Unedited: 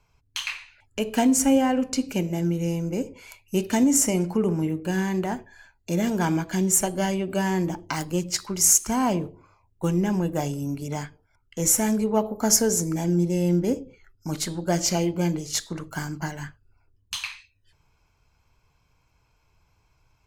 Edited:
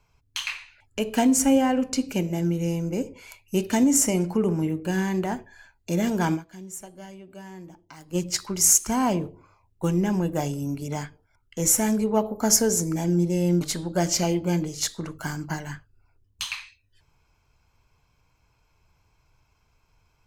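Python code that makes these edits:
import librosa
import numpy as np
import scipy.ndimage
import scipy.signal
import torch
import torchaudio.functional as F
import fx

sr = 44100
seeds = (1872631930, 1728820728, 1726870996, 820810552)

y = fx.edit(x, sr, fx.fade_down_up(start_s=6.34, length_s=1.82, db=-17.5, fade_s=0.32, curve='exp'),
    fx.cut(start_s=13.61, length_s=0.72), tone=tone)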